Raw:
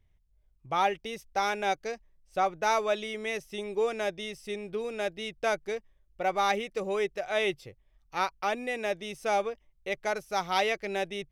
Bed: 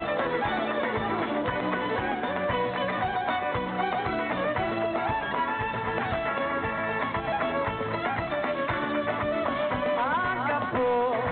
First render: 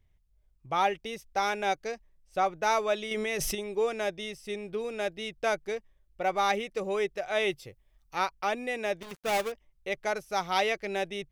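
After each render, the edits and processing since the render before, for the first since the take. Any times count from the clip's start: 3.11–3.55 fast leveller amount 100%; 7.5–8.16 high shelf 6100 Hz +7.5 dB; 9.01–9.52 switching dead time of 0.27 ms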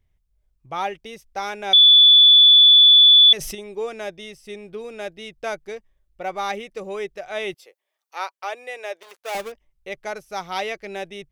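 1.73–3.33 bleep 3460 Hz -7.5 dBFS; 7.54–9.35 HPF 430 Hz 24 dB/oct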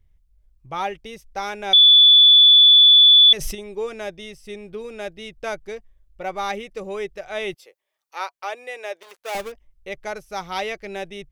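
low shelf 87 Hz +11 dB; notch 710 Hz, Q 17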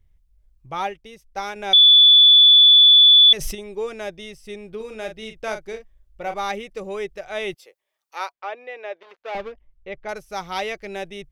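0.87–1.56 upward expander, over -38 dBFS; 4.76–6.34 doubler 41 ms -8 dB; 8.32–10.09 air absorption 270 m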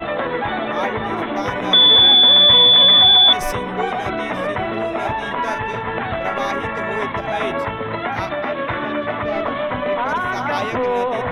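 add bed +5 dB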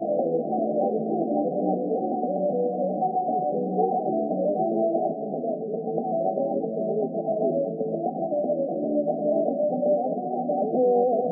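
FFT band-pass 140–790 Hz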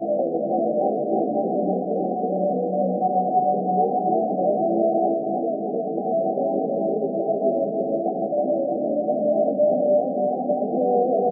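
doubler 15 ms -6 dB; feedback echo 0.319 s, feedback 50%, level -4 dB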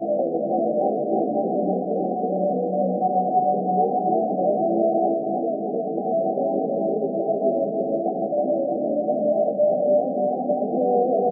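9.32–9.87 bell 270 Hz -9 dB 0.43 oct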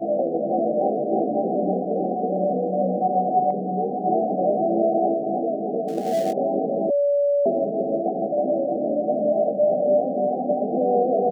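3.5–4.04 dynamic EQ 750 Hz, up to -6 dB, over -30 dBFS, Q 1.1; 5.88–6.33 switching dead time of 0.089 ms; 6.9–7.46 bleep 572 Hz -16.5 dBFS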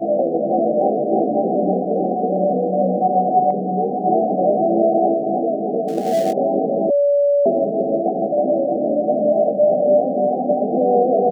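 gain +4.5 dB

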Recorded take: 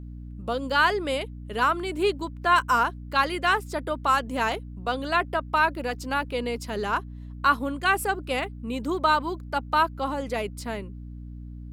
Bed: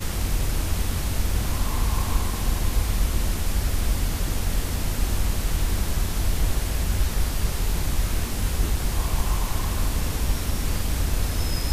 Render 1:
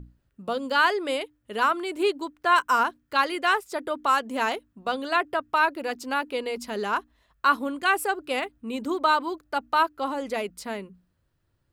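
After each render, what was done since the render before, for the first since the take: notches 60/120/180/240/300 Hz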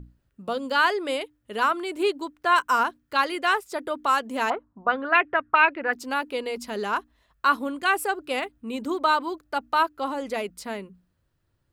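4.5–5.93 envelope low-pass 770–2500 Hz up, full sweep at -20.5 dBFS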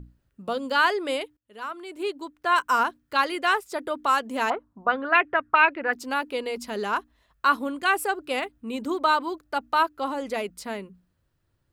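1.37–2.78 fade in, from -24 dB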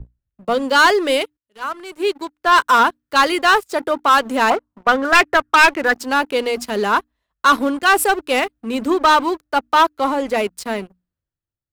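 sample leveller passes 3; three-band expander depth 40%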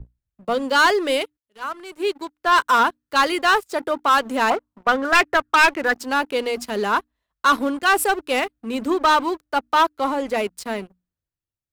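gain -3.5 dB

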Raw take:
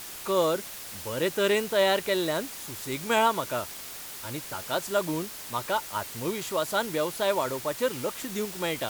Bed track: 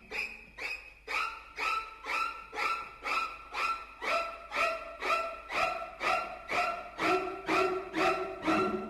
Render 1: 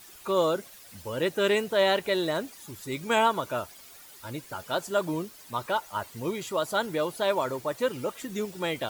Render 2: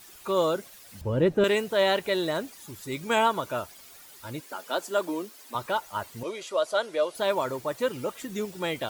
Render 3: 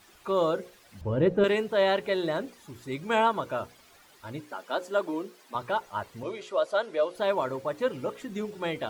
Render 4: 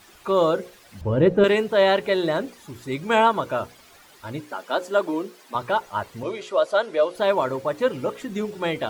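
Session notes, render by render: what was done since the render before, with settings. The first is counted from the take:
denoiser 12 dB, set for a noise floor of -41 dBFS
1.01–1.44 tilt -4 dB/oct; 4.4–5.55 steep high-pass 220 Hz; 6.23–7.15 speaker cabinet 440–9700 Hz, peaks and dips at 590 Hz +7 dB, 860 Hz -6 dB, 1800 Hz -3 dB, 7500 Hz -5 dB
LPF 2400 Hz 6 dB/oct; notches 60/120/180/240/300/360/420/480/540 Hz
gain +6 dB

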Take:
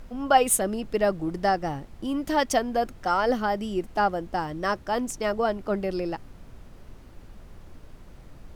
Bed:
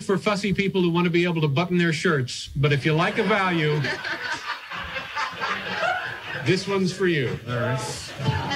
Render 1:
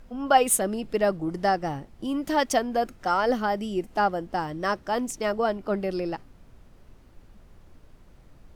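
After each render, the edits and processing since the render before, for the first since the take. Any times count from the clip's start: noise print and reduce 6 dB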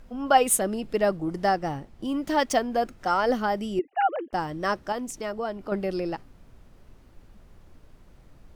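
1.45–2.97 median filter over 3 samples; 3.79–4.33 sine-wave speech; 4.92–5.72 compressor 1.5:1, threshold -36 dBFS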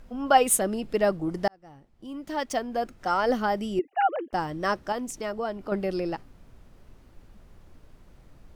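1.48–3.4 fade in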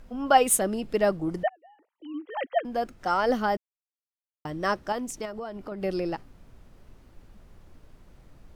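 1.43–2.65 sine-wave speech; 3.57–4.45 mute; 5.25–5.82 compressor 5:1, threshold -32 dBFS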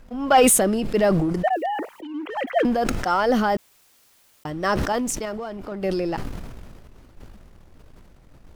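sample leveller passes 1; sustainer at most 27 dB/s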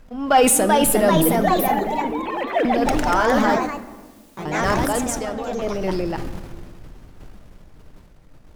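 echoes that change speed 0.419 s, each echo +2 st, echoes 3; shoebox room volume 1200 m³, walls mixed, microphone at 0.48 m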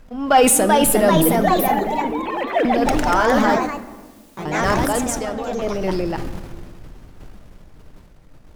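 gain +1.5 dB

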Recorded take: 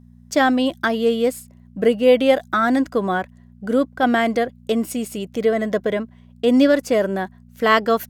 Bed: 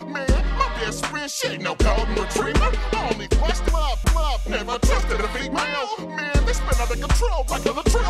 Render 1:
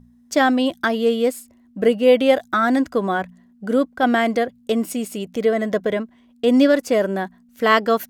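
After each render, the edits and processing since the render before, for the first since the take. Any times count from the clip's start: de-hum 60 Hz, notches 3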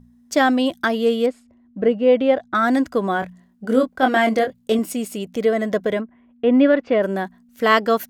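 1.26–2.55 tape spacing loss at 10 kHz 25 dB; 3.2–4.79 doubler 23 ms -5 dB; 6–7.02 LPF 2100 Hz -> 3400 Hz 24 dB/oct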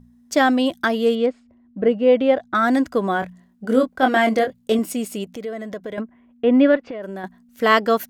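1.15–1.87 air absorption 120 m; 5.24–5.98 compressor 2:1, threshold -35 dBFS; 6.76–7.24 compressor 12:1, threshold -27 dBFS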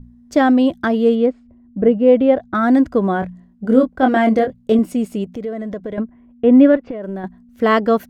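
tilt -3 dB/oct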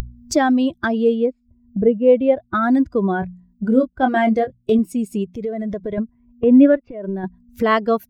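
per-bin expansion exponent 1.5; upward compressor, threshold -15 dBFS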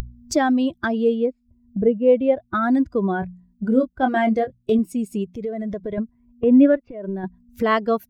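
gain -2.5 dB

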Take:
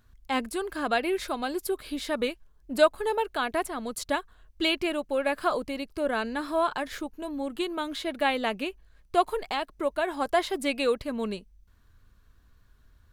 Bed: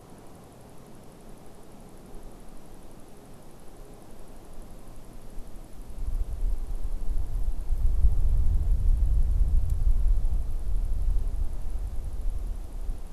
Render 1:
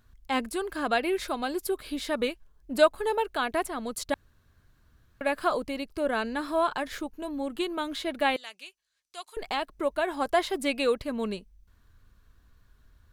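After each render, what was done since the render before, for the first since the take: 4.14–5.21 room tone; 8.36–9.37 band-pass 6500 Hz, Q 1.1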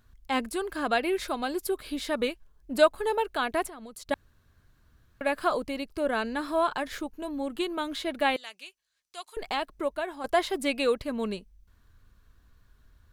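3.67–4.11 compressor 8:1, threshold -40 dBFS; 9.73–10.24 fade out, to -10 dB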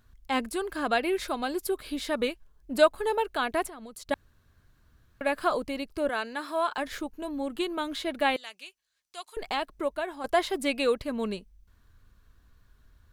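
6.09–6.78 HPF 610 Hz 6 dB/oct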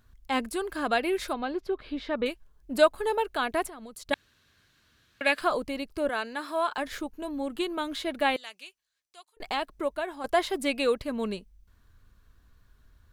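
1.33–2.26 air absorption 240 m; 4.13–5.41 weighting filter D; 8.4–9.4 fade out equal-power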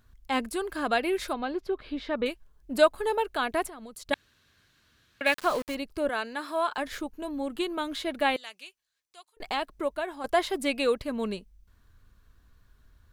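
5.26–5.75 sample gate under -35 dBFS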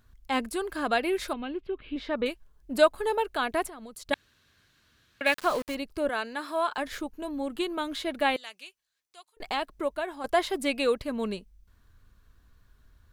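1.33–1.96 EQ curve 290 Hz 0 dB, 660 Hz -9 dB, 1800 Hz -5 dB, 2800 Hz +4 dB, 5400 Hz -20 dB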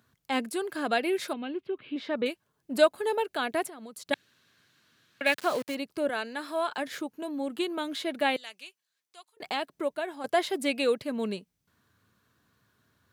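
dynamic EQ 1100 Hz, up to -5 dB, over -44 dBFS, Q 2.3; HPF 120 Hz 24 dB/oct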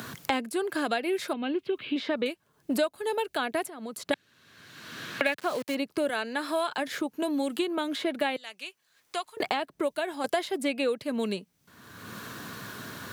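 three-band squash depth 100%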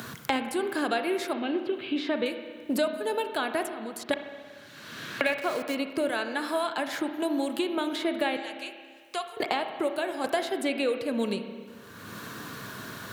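spring tank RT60 1.8 s, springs 30/57 ms, chirp 50 ms, DRR 7 dB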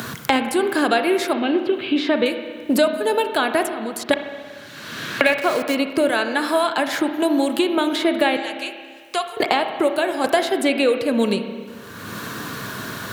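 gain +9.5 dB; limiter -1 dBFS, peak gain reduction 1 dB

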